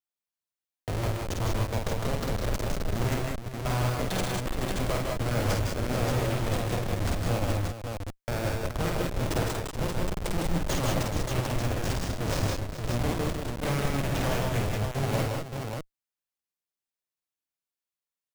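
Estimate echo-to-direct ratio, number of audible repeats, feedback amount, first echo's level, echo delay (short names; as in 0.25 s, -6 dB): 2.5 dB, 4, no steady repeat, -3.5 dB, 50 ms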